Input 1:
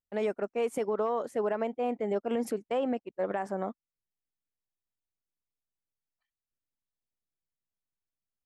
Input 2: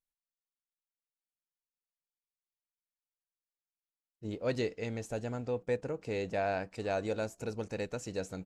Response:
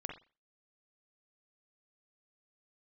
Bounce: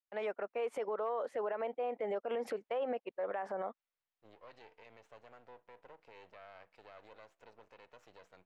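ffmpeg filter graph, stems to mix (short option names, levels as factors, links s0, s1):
-filter_complex "[0:a]dynaudnorm=f=130:g=7:m=2.24,adynamicequalizer=threshold=0.0316:dfrequency=500:dqfactor=2.6:tfrequency=500:tqfactor=2.6:attack=5:release=100:ratio=0.375:range=3:mode=boostabove:tftype=bell,volume=0.841[s0];[1:a]highpass=f=52:w=0.5412,highpass=f=52:w=1.3066,alimiter=level_in=2:limit=0.0631:level=0:latency=1:release=64,volume=0.501,aeval=exprs='max(val(0),0)':c=same,volume=0.355,asplit=2[s1][s2];[s2]volume=0.141[s3];[2:a]atrim=start_sample=2205[s4];[s3][s4]afir=irnorm=-1:irlink=0[s5];[s0][s1][s5]amix=inputs=3:normalize=0,acrossover=split=520 3900:gain=0.158 1 0.1[s6][s7][s8];[s6][s7][s8]amix=inputs=3:normalize=0,alimiter=level_in=1.88:limit=0.0631:level=0:latency=1:release=102,volume=0.531"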